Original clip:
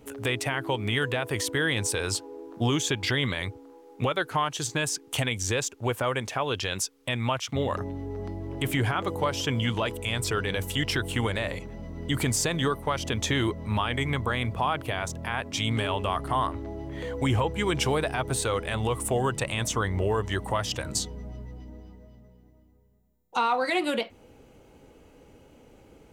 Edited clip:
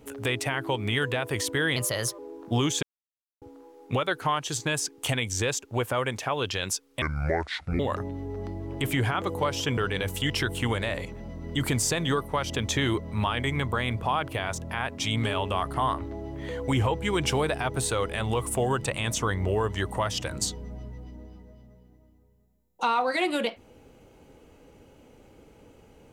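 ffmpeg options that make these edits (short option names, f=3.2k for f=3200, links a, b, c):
-filter_complex "[0:a]asplit=8[a][b][c][d][e][f][g][h];[a]atrim=end=1.764[i];[b]atrim=start=1.76:end=2.28,asetpts=PTS-STARTPTS,asetrate=53802,aresample=44100[j];[c]atrim=start=2.276:end=2.92,asetpts=PTS-STARTPTS,afade=t=out:st=0.64:d=0.004:c=hsin[k];[d]atrim=start=2.92:end=3.51,asetpts=PTS-STARTPTS,volume=0[l];[e]atrim=start=3.51:end=7.114,asetpts=PTS-STARTPTS,afade=t=in:d=0.004:c=hsin[m];[f]atrim=start=7.11:end=7.6,asetpts=PTS-STARTPTS,asetrate=27783,aresample=44100[n];[g]atrim=start=7.596:end=9.582[o];[h]atrim=start=10.308[p];[i][j]acrossfade=d=0.004:c1=hsin:c2=hsin[q];[k][l][m]concat=n=3:v=0:a=1[r];[q][r]acrossfade=d=0.004:c1=hsin:c2=hsin[s];[s][n]acrossfade=d=0.004:c1=hsin:c2=hsin[t];[t][o]acrossfade=d=0.004:c1=hsin:c2=hsin[u];[u][p]acrossfade=d=0.004:c1=hsin:c2=hsin"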